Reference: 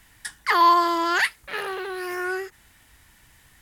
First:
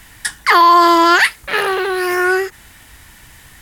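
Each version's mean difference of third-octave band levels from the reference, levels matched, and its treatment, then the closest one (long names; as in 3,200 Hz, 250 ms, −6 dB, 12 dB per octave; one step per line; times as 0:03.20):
2.5 dB: boost into a limiter +14 dB
level −1 dB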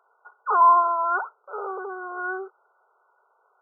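11.5 dB: linear-phase brick-wall band-pass 370–1,500 Hz
level +1 dB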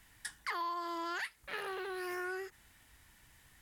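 4.5 dB: downward compressor 6 to 1, threshold −29 dBFS, peak gain reduction 15.5 dB
level −7.5 dB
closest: first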